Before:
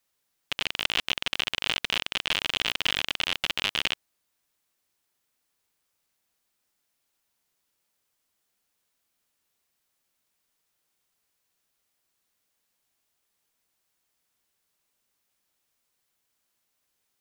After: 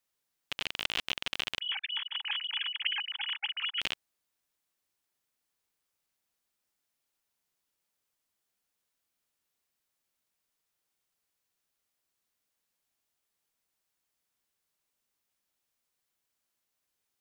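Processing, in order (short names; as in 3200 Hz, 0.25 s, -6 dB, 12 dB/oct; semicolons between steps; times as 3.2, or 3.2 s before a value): 1.6–3.81 sine-wave speech; gain -6 dB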